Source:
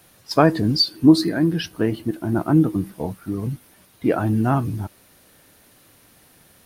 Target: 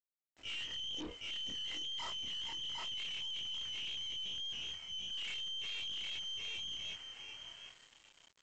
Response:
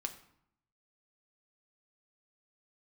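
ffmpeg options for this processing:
-af "afftfilt=real='re':imag='-im':win_size=2048:overlap=0.75,dynaudnorm=f=170:g=7:m=11.5dB,asetrate=34839,aresample=44100,agate=range=-25dB:threshold=-45dB:ratio=16:detection=peak,lowpass=f=2.8k:t=q:w=0.5098,lowpass=f=2.8k:t=q:w=0.6013,lowpass=f=2.8k:t=q:w=0.9,lowpass=f=2.8k:t=q:w=2.563,afreqshift=-3300,flanger=delay=2.2:depth=2.3:regen=-26:speed=0.37:shape=triangular,areverse,acompressor=threshold=-30dB:ratio=5,areverse,aecho=1:1:758|1516|2274:0.473|0.0946|0.0189,aeval=exprs='(tanh(141*val(0)+0.45)-tanh(0.45))/141':c=same,aresample=16000,aeval=exprs='val(0)*gte(abs(val(0)),0.001)':c=same,aresample=44100,volume=2.5dB"

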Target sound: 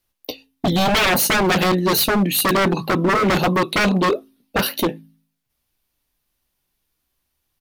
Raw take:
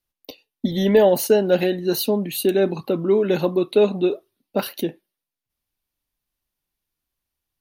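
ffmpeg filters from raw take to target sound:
-filter_complex "[0:a]asplit=2[a][b];[b]adelay=16,volume=-11dB[c];[a][c]amix=inputs=2:normalize=0,bandreject=f=53.75:t=h:w=4,bandreject=f=107.5:t=h:w=4,bandreject=f=161.25:t=h:w=4,bandreject=f=215:t=h:w=4,bandreject=f=268.75:t=h:w=4,aeval=exprs='0.1*(abs(mod(val(0)/0.1+3,4)-2)-1)':c=same,volume=8.5dB"

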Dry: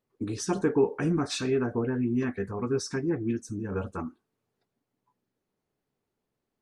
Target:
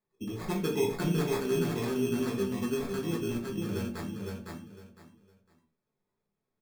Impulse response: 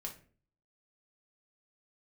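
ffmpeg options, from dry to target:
-filter_complex "[0:a]aecho=1:1:507|1014|1521:0.668|0.16|0.0385,acrusher=samples=15:mix=1:aa=0.000001[a];[1:a]atrim=start_sample=2205,atrim=end_sample=6615[b];[a][b]afir=irnorm=-1:irlink=0,volume=-2.5dB"

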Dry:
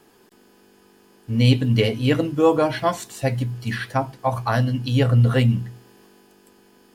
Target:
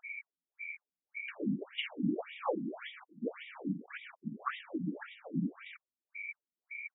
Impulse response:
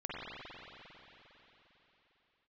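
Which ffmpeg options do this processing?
-af "aresample=16000,acrusher=bits=5:mix=0:aa=0.000001,aresample=44100,aeval=exprs='val(0)+0.00631*sin(2*PI*2300*n/s)':c=same,afftfilt=real='hypot(re,im)*cos(2*PI*random(0))':imag='hypot(re,im)*sin(2*PI*random(1))':win_size=512:overlap=0.75,acompressor=threshold=-42dB:ratio=2.5,afftfilt=real='re*between(b*sr/1024,210*pow(2700/210,0.5+0.5*sin(2*PI*1.8*pts/sr))/1.41,210*pow(2700/210,0.5+0.5*sin(2*PI*1.8*pts/sr))*1.41)':imag='im*between(b*sr/1024,210*pow(2700/210,0.5+0.5*sin(2*PI*1.8*pts/sr))/1.41,210*pow(2700/210,0.5+0.5*sin(2*PI*1.8*pts/sr))*1.41)':win_size=1024:overlap=0.75,volume=10.5dB"

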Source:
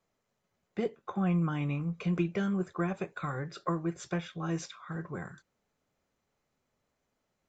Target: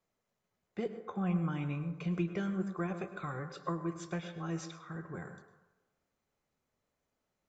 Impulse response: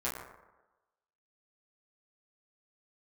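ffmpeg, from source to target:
-filter_complex "[0:a]asplit=2[a][b];[1:a]atrim=start_sample=2205,adelay=102[c];[b][c]afir=irnorm=-1:irlink=0,volume=-15dB[d];[a][d]amix=inputs=2:normalize=0,volume=-4.5dB"

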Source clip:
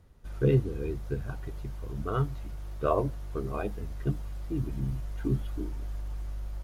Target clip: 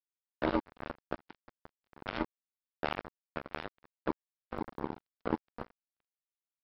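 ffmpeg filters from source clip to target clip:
-filter_complex "[0:a]afreqshift=170,acrossover=split=230|3000[a][b][c];[b]acompressor=threshold=-30dB:ratio=10[d];[a][d][c]amix=inputs=3:normalize=0,afreqshift=13,aresample=11025,acrusher=bits=3:mix=0:aa=0.5,aresample=44100,volume=1dB"

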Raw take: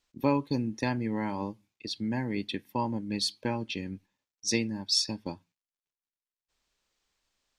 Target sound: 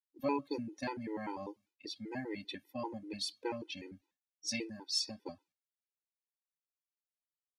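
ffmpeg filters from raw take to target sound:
-af "lowshelf=f=240:t=q:w=1.5:g=-8.5,agate=range=-33dB:threshold=-60dB:ratio=3:detection=peak,afftfilt=real='re*gt(sin(2*PI*5.1*pts/sr)*(1-2*mod(floor(b*sr/1024/260),2)),0)':imag='im*gt(sin(2*PI*5.1*pts/sr)*(1-2*mod(floor(b*sr/1024/260),2)),0)':win_size=1024:overlap=0.75,volume=-4dB"

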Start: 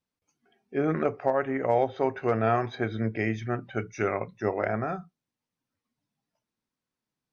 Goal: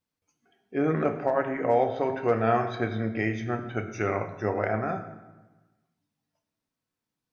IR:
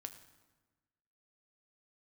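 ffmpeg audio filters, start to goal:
-filter_complex "[0:a]bandreject=f=133.1:t=h:w=4,bandreject=f=266.2:t=h:w=4,bandreject=f=399.3:t=h:w=4,bandreject=f=532.4:t=h:w=4,bandreject=f=665.5:t=h:w=4,bandreject=f=798.6:t=h:w=4,bandreject=f=931.7:t=h:w=4,bandreject=f=1.0648k:t=h:w=4,bandreject=f=1.1979k:t=h:w=4,bandreject=f=1.331k:t=h:w=4,bandreject=f=1.4641k:t=h:w=4,bandreject=f=1.5972k:t=h:w=4,bandreject=f=1.7303k:t=h:w=4,bandreject=f=1.8634k:t=h:w=4,bandreject=f=1.9965k:t=h:w=4,bandreject=f=2.1296k:t=h:w=4,bandreject=f=2.2627k:t=h:w=4,bandreject=f=2.3958k:t=h:w=4,bandreject=f=2.5289k:t=h:w=4,bandreject=f=2.662k:t=h:w=4,bandreject=f=2.7951k:t=h:w=4,bandreject=f=2.9282k:t=h:w=4,bandreject=f=3.0613k:t=h:w=4,bandreject=f=3.1944k:t=h:w=4,bandreject=f=3.3275k:t=h:w=4,bandreject=f=3.4606k:t=h:w=4,bandreject=f=3.5937k:t=h:w=4,bandreject=f=3.7268k:t=h:w=4,bandreject=f=3.8599k:t=h:w=4,bandreject=f=3.993k:t=h:w=4,bandreject=f=4.1261k:t=h:w=4[a];[1:a]atrim=start_sample=2205[b];[a][b]afir=irnorm=-1:irlink=0,volume=5.5dB"

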